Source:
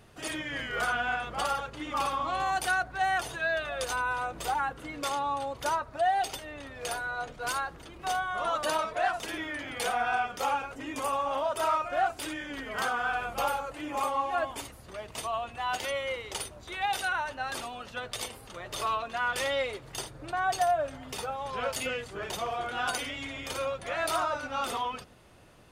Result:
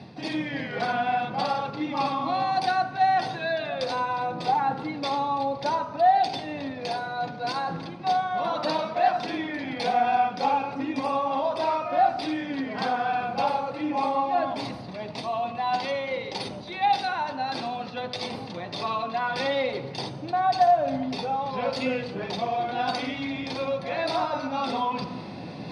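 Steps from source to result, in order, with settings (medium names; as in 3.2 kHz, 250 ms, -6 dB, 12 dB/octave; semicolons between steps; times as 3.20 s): Chebyshev band-pass 200–4000 Hz, order 2; reverse; upward compressor, threshold -33 dBFS; reverse; reverberation RT60 1.0 s, pre-delay 3 ms, DRR 6 dB; trim -2 dB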